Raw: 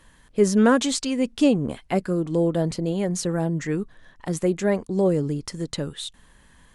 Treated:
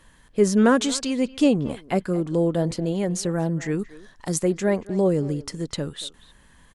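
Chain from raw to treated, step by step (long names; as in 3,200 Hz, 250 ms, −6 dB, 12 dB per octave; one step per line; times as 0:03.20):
0:03.79–0:04.42: flat-topped bell 6,900 Hz +8.5 dB
far-end echo of a speakerphone 230 ms, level −17 dB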